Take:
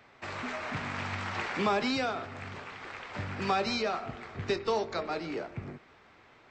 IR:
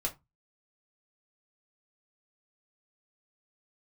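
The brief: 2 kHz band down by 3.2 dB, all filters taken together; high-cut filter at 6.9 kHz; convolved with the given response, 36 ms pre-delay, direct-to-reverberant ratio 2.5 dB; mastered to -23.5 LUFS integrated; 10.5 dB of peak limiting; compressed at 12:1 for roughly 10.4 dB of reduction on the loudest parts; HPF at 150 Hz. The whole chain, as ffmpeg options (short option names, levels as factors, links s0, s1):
-filter_complex "[0:a]highpass=150,lowpass=6900,equalizer=f=2000:t=o:g=-4,acompressor=threshold=0.0178:ratio=12,alimiter=level_in=3.76:limit=0.0631:level=0:latency=1,volume=0.266,asplit=2[s0][s1];[1:a]atrim=start_sample=2205,adelay=36[s2];[s1][s2]afir=irnorm=-1:irlink=0,volume=0.531[s3];[s0][s3]amix=inputs=2:normalize=0,volume=8.41"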